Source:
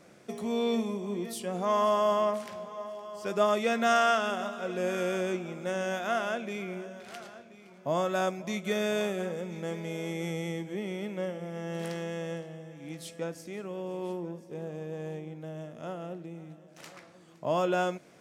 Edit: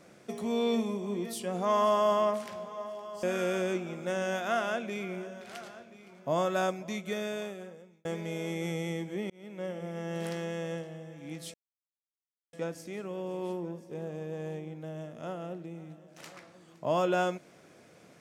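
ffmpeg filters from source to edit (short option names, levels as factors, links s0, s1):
-filter_complex "[0:a]asplit=5[s0][s1][s2][s3][s4];[s0]atrim=end=3.232[s5];[s1]atrim=start=4.818:end=9.64,asetpts=PTS-STARTPTS,afade=t=out:st=3.322:d=1.5[s6];[s2]atrim=start=9.64:end=10.89,asetpts=PTS-STARTPTS,afade=t=in:d=0.004:c=hsin,afade=t=out:st=1.246:d=0.004:c=hsin[s7];[s3]atrim=start=10.89:end=13.13,asetpts=PTS-STARTPTS,afade=t=in:d=0.51,afade=t=out:st=2.236:d=0.004:c=hsin,apad=pad_dur=0.99[s8];[s4]atrim=start=13.13,asetpts=PTS-STARTPTS,afade=t=in:d=0.004:c=hsin[s9];[s6][s7][s8][s9]concat=n=4:v=0:a=1[s10];[s5][s10]acrossfade=d=0.004:c1=hsin:c2=hsin"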